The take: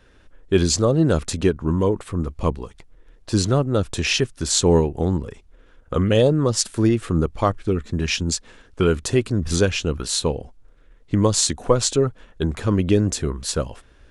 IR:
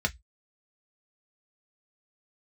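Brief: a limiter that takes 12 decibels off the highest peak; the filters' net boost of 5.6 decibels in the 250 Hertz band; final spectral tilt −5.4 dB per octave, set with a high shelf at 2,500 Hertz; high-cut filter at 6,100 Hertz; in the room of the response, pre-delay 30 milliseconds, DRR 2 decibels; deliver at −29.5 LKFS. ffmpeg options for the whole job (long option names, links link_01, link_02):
-filter_complex "[0:a]lowpass=6100,equalizer=frequency=250:width_type=o:gain=7.5,highshelf=frequency=2500:gain=5,alimiter=limit=-12.5dB:level=0:latency=1,asplit=2[link_01][link_02];[1:a]atrim=start_sample=2205,adelay=30[link_03];[link_02][link_03]afir=irnorm=-1:irlink=0,volume=-10.5dB[link_04];[link_01][link_04]amix=inputs=2:normalize=0,volume=-9.5dB"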